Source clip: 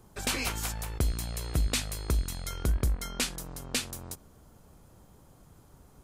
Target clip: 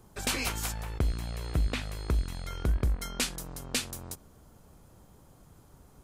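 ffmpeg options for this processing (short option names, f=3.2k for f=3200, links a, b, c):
-filter_complex "[0:a]asettb=1/sr,asplit=3[a][b][c];[a]atrim=end=0.804[d];[b]atrim=start=0.8:end=3.02,asetpts=PTS-STARTPTS,afade=t=in:d=0.004:c=qsin,afade=t=out:st=2.216:d=0.004:c=qsin,acrossover=split=3300[e][f];[f]acompressor=threshold=-48dB:ratio=4:attack=1:release=60[g];[e][g]amix=inputs=2:normalize=0[h];[c]atrim=start=3.016[i];[d][h]acrossfade=d=0.004:c1=hsin:c2=qsin[j];[j][i]acrossfade=d=0.004:c1=qsin:c2=hsin"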